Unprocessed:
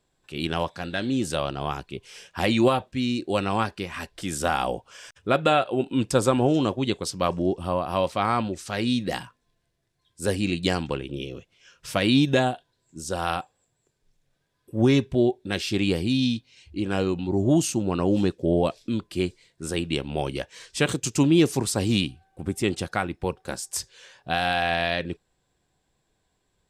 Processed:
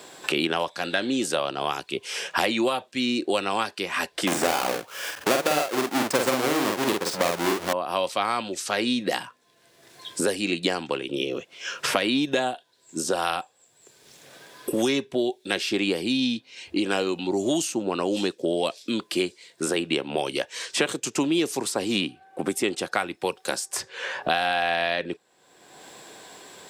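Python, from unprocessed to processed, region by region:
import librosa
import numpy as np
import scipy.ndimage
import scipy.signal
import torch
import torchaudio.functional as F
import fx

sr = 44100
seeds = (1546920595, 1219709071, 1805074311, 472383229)

y = fx.chain(x, sr, fx.halfwave_hold(),
    fx.doubler(ms=47.0, db=-3.0), at=(4.27, 7.73))
y = scipy.signal.sosfilt(scipy.signal.butter(2, 330.0, 'highpass', fs=sr, output='sos'), y)
y = fx.band_squash(y, sr, depth_pct=100)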